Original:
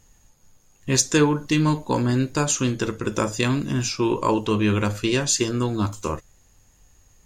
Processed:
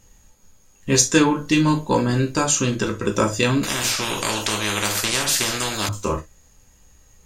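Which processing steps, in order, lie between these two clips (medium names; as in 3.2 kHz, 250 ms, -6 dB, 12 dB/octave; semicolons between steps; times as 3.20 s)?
gated-style reverb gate 90 ms falling, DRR 2 dB; 3.63–5.89 s: spectrum-flattening compressor 4:1; trim +1.5 dB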